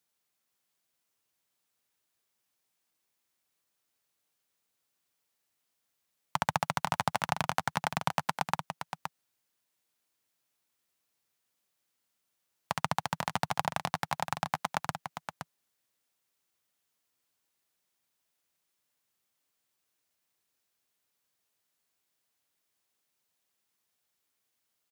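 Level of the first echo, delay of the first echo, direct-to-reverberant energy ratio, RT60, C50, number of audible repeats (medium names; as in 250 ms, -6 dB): -8.0 dB, 519 ms, no reverb, no reverb, no reverb, 1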